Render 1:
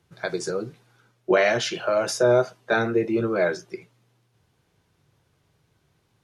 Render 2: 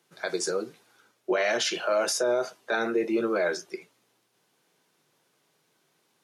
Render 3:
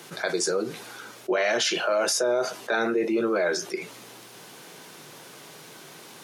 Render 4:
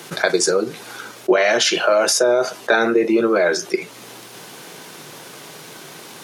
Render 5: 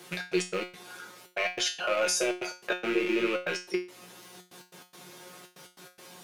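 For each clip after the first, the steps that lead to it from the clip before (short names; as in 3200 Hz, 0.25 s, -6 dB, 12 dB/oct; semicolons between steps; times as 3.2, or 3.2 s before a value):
Bessel high-pass 280 Hz, order 6; high shelf 5200 Hz +6.5 dB; limiter -16.5 dBFS, peak gain reduction 8.5 dB
fast leveller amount 50%
transient shaper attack +4 dB, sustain -4 dB; gain +7.5 dB
rattling part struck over -35 dBFS, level -10 dBFS; step gate "xx.x.x.xxx" 143 bpm -60 dB; resonator 180 Hz, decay 0.31 s, harmonics all, mix 90%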